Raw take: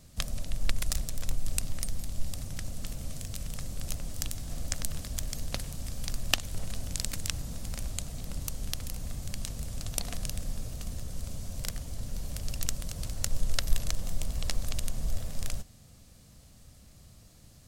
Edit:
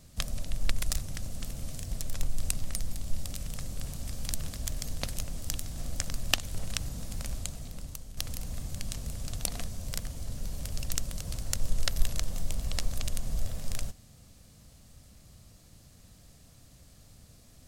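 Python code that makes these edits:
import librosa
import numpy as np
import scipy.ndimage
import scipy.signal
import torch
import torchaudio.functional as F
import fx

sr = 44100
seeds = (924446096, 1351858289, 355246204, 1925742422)

y = fx.edit(x, sr, fx.move(start_s=2.41, length_s=0.92, to_s=0.99),
    fx.swap(start_s=3.86, length_s=0.98, other_s=5.65, other_length_s=0.47),
    fx.cut(start_s=6.76, length_s=0.53),
    fx.fade_out_to(start_s=7.87, length_s=0.83, floor_db=-11.0),
    fx.cut(start_s=10.21, length_s=1.18), tone=tone)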